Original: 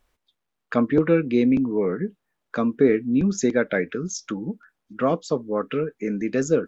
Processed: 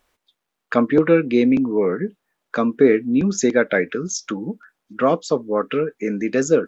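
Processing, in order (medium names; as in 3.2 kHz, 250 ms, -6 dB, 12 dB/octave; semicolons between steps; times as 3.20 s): bass shelf 150 Hz -11 dB; trim +5.5 dB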